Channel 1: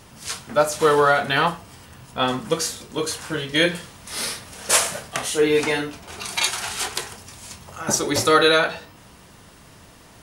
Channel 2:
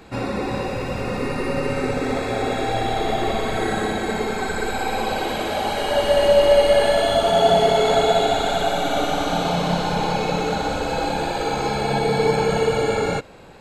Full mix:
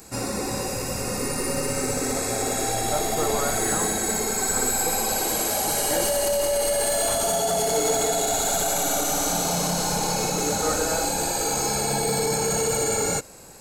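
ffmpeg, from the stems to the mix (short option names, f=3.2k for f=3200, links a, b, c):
-filter_complex "[0:a]lowpass=1.3k,adelay=2350,volume=-11dB[a];[1:a]alimiter=limit=-13dB:level=0:latency=1:release=18,aexciter=amount=8.1:drive=7.5:freq=5.1k,asoftclip=type=hard:threshold=-13.5dB,volume=-4dB[b];[a][b]amix=inputs=2:normalize=0"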